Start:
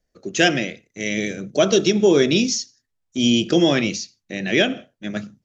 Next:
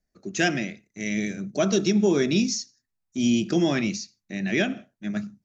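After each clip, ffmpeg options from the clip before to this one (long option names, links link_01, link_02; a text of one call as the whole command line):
ffmpeg -i in.wav -af "equalizer=frequency=200:width_type=o:width=0.33:gain=6,equalizer=frequency=500:width_type=o:width=0.33:gain=-9,equalizer=frequency=3150:width_type=o:width=0.33:gain=-8,volume=-5dB" out.wav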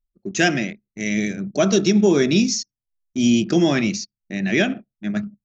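ffmpeg -i in.wav -af "anlmdn=0.251,volume=5dB" out.wav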